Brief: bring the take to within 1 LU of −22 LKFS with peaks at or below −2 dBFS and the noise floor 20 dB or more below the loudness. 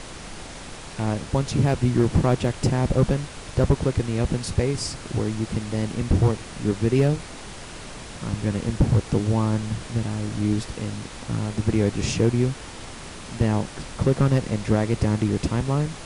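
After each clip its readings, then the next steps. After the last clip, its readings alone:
share of clipped samples 0.5%; peaks flattened at −11.0 dBFS; background noise floor −39 dBFS; target noise floor −44 dBFS; integrated loudness −24.0 LKFS; sample peak −11.0 dBFS; target loudness −22.0 LKFS
→ clipped peaks rebuilt −11 dBFS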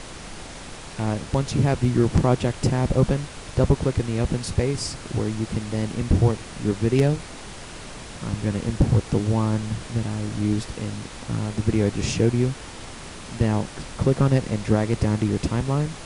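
share of clipped samples 0.0%; background noise floor −39 dBFS; target noise floor −44 dBFS
→ noise reduction from a noise print 6 dB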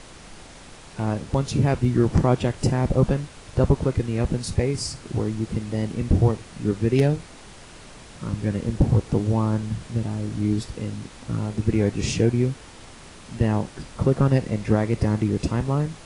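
background noise floor −44 dBFS; integrated loudness −24.0 LKFS; sample peak −5.0 dBFS; target loudness −22.0 LKFS
→ level +2 dB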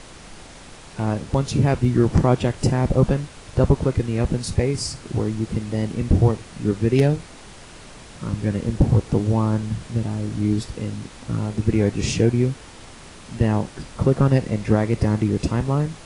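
integrated loudness −22.0 LKFS; sample peak −3.0 dBFS; background noise floor −42 dBFS

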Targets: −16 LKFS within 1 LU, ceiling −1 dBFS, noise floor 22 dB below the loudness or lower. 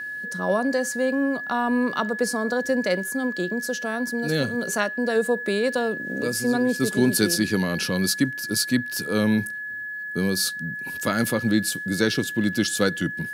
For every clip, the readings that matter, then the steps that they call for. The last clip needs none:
interfering tone 1,700 Hz; level of the tone −30 dBFS; integrated loudness −24.0 LKFS; sample peak −6.5 dBFS; target loudness −16.0 LKFS
→ notch filter 1,700 Hz, Q 30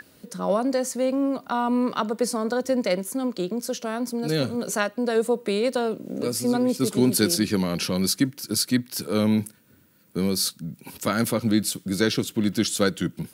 interfering tone none found; integrated loudness −24.5 LKFS; sample peak −6.5 dBFS; target loudness −16.0 LKFS
→ level +8.5 dB
brickwall limiter −1 dBFS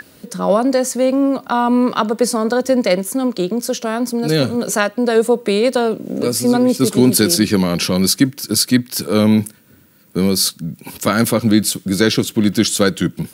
integrated loudness −16.0 LKFS; sample peak −1.0 dBFS; background noise floor −48 dBFS

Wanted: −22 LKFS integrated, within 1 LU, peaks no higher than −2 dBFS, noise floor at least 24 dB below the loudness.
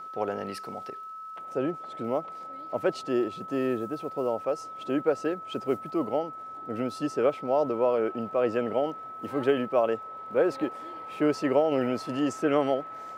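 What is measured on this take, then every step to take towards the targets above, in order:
crackle rate 42 per second; interfering tone 1,300 Hz; level of the tone −38 dBFS; integrated loudness −29.0 LKFS; sample peak −11.5 dBFS; target loudness −22.0 LKFS
→ click removal
notch filter 1,300 Hz, Q 30
level +7 dB

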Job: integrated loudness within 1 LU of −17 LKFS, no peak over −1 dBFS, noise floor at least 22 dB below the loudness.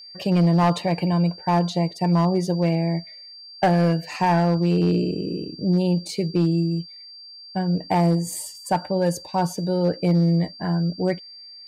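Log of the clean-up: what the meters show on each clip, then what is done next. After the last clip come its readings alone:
share of clipped samples 1.1%; peaks flattened at −13.0 dBFS; interfering tone 4,700 Hz; level of the tone −40 dBFS; integrated loudness −22.5 LKFS; sample peak −13.0 dBFS; target loudness −17.0 LKFS
→ clipped peaks rebuilt −13 dBFS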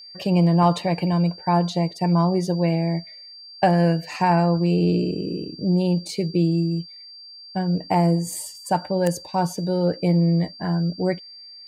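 share of clipped samples 0.0%; interfering tone 4,700 Hz; level of the tone −40 dBFS
→ notch filter 4,700 Hz, Q 30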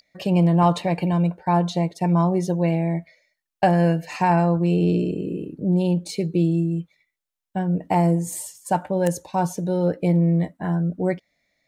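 interfering tone none found; integrated loudness −22.0 LKFS; sample peak −4.0 dBFS; target loudness −17.0 LKFS
→ level +5 dB
brickwall limiter −1 dBFS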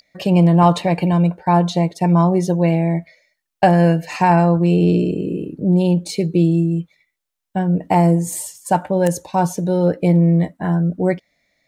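integrated loudness −17.0 LKFS; sample peak −1.0 dBFS; background noise floor −78 dBFS

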